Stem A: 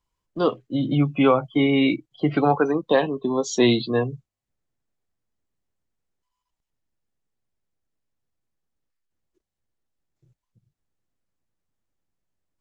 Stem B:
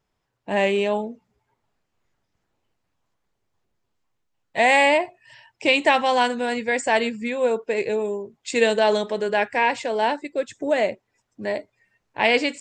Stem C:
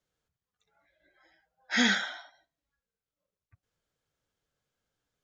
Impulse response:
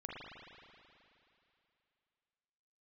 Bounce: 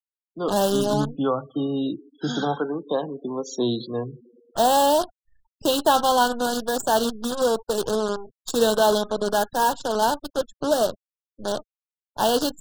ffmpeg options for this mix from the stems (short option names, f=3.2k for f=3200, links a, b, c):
-filter_complex "[0:a]volume=-6.5dB,asplit=2[a][b];[b]volume=-16dB[c];[1:a]equalizer=f=470:t=o:w=1.3:g=-3,acrusher=bits=5:dc=4:mix=0:aa=0.000001,volume=2dB[d];[2:a]adelay=500,volume=-5dB,asplit=2[e][f];[f]volume=-17.5dB[g];[3:a]atrim=start_sample=2205[h];[c][g]amix=inputs=2:normalize=0[i];[i][h]afir=irnorm=-1:irlink=0[j];[a][d][e][j]amix=inputs=4:normalize=0,afftfilt=real='re*gte(hypot(re,im),0.0158)':imag='im*gte(hypot(re,im),0.0158)':win_size=1024:overlap=0.75,acrossover=split=150|3000[k][l][m];[k]acompressor=threshold=-28dB:ratio=4[n];[n][l][m]amix=inputs=3:normalize=0,asuperstop=centerf=2200:order=8:qfactor=1.4"